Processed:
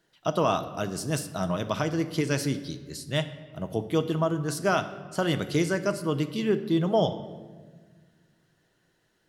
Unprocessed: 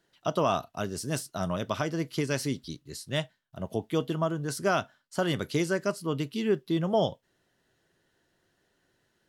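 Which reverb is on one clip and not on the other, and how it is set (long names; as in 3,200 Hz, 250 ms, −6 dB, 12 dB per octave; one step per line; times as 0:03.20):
rectangular room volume 1,500 cubic metres, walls mixed, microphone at 0.58 metres
level +1.5 dB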